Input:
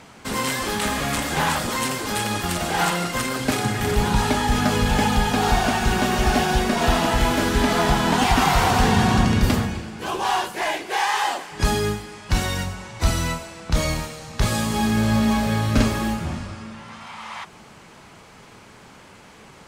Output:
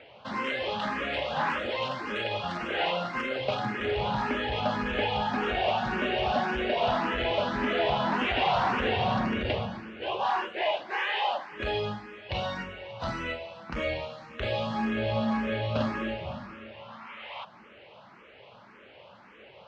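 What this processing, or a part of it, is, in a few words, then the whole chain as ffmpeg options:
barber-pole phaser into a guitar amplifier: -filter_complex "[0:a]asplit=2[a][b];[b]afreqshift=1.8[c];[a][c]amix=inputs=2:normalize=1,asoftclip=type=tanh:threshold=-14.5dB,highpass=93,equalizer=f=94:t=q:w=4:g=-5,equalizer=f=160:t=q:w=4:g=-9,equalizer=f=280:t=q:w=4:g=-5,equalizer=f=570:t=q:w=4:g=9,equalizer=f=2.8k:t=q:w=4:g=5,lowpass=f=3.7k:w=0.5412,lowpass=f=3.7k:w=1.3066,volume=-3.5dB"

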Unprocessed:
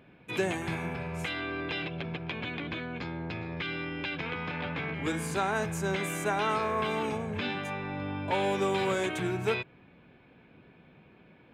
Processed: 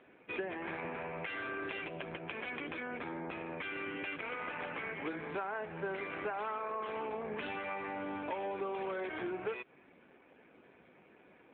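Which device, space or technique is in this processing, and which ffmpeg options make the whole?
voicemail: -af "highpass=330,lowpass=2.7k,acompressor=threshold=-36dB:ratio=8,volume=2dB" -ar 8000 -c:a libopencore_amrnb -b:a 7400

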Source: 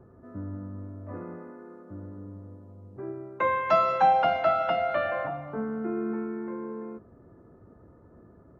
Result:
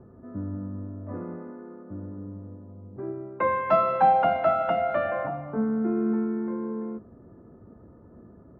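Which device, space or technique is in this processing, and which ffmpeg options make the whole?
phone in a pocket: -af "lowpass=3.6k,equalizer=f=220:t=o:w=0.49:g=5,highshelf=f=2.2k:g=-10,volume=2.5dB"

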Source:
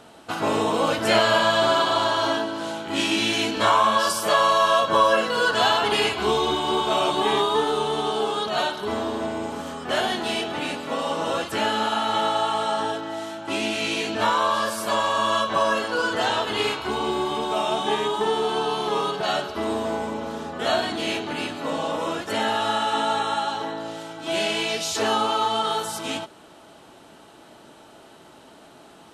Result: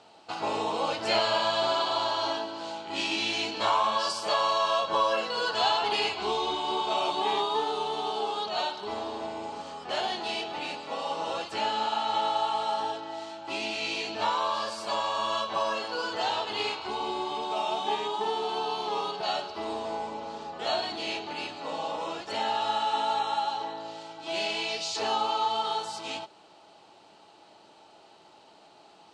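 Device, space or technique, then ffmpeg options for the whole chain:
car door speaker: -af "highpass=100,equalizer=f=140:t=q:w=4:g=-7,equalizer=f=250:t=q:w=4:g=-8,equalizer=f=830:t=q:w=4:g=7,equalizer=f=1.6k:t=q:w=4:g=-4,equalizer=f=2.6k:t=q:w=4:g=4,equalizer=f=4.5k:t=q:w=4:g=9,lowpass=f=7.9k:w=0.5412,lowpass=f=7.9k:w=1.3066,volume=-8.5dB"

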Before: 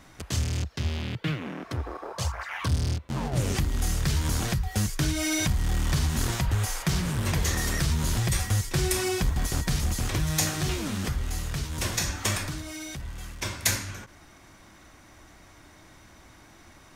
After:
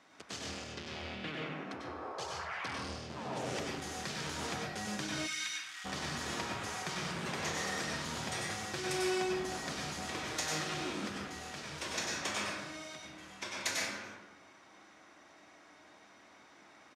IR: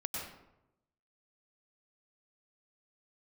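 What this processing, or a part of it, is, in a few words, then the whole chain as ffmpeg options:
supermarket ceiling speaker: -filter_complex "[0:a]highpass=320,lowpass=5.6k[a];[1:a]atrim=start_sample=2205[b];[a][b]afir=irnorm=-1:irlink=0,asplit=3[c][d][e];[c]afade=t=out:st=5.26:d=0.02[f];[d]highpass=f=1.4k:w=0.5412,highpass=f=1.4k:w=1.3066,afade=t=in:st=5.26:d=0.02,afade=t=out:st=5.84:d=0.02[g];[e]afade=t=in:st=5.84:d=0.02[h];[f][g][h]amix=inputs=3:normalize=0,highshelf=f=12k:g=6,asplit=2[i][j];[j]adelay=170,lowpass=f=2k:p=1,volume=-19dB,asplit=2[k][l];[l]adelay=170,lowpass=f=2k:p=1,volume=0.42,asplit=2[m][n];[n]adelay=170,lowpass=f=2k:p=1,volume=0.42[o];[i][k][m][o]amix=inputs=4:normalize=0,volume=-6dB"

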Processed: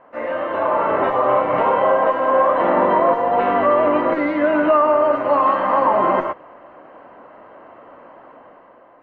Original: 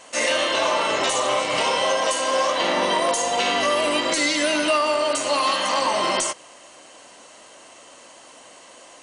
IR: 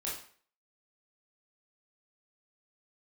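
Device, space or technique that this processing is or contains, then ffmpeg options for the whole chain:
action camera in a waterproof case: -af "lowpass=f=1.5k:w=0.5412,lowpass=f=1.5k:w=1.3066,dynaudnorm=f=110:g=13:m=7dB" -ar 44100 -c:a aac -b:a 48k

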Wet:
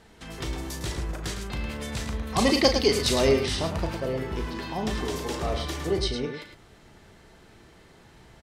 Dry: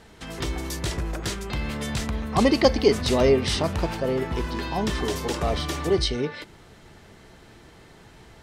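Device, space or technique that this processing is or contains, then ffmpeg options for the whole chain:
slapback doubling: -filter_complex "[0:a]asplit=3[a][b][c];[b]adelay=37,volume=-9dB[d];[c]adelay=107,volume=-8dB[e];[a][d][e]amix=inputs=3:normalize=0,asettb=1/sr,asplit=3[f][g][h];[f]atrim=end=2.274[i];[g]atrim=start=2.27:end=3.46,asetpts=PTS-STARTPTS,afade=t=in:d=0.004:c=qsin,afade=t=out:st=1.186:d=0.004:c=qsin,highshelf=f=2.5k:g=9.5[j];[h]atrim=start=3.456[k];[i][j]acrossfade=d=0.004:c1=hsin:c2=qsin[l];[l][k]acrossfade=d=0.004:c1=qsin:c2=hsin,volume=-4.5dB"

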